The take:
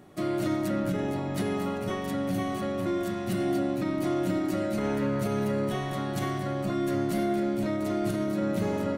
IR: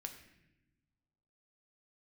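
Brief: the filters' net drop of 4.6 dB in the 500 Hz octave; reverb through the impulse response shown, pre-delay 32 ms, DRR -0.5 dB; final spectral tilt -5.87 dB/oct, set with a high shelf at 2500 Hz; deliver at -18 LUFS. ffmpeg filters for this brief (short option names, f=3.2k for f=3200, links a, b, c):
-filter_complex "[0:a]equalizer=f=500:t=o:g=-7,highshelf=f=2.5k:g=4,asplit=2[a][b];[1:a]atrim=start_sample=2205,adelay=32[c];[b][c]afir=irnorm=-1:irlink=0,volume=4dB[d];[a][d]amix=inputs=2:normalize=0,volume=8.5dB"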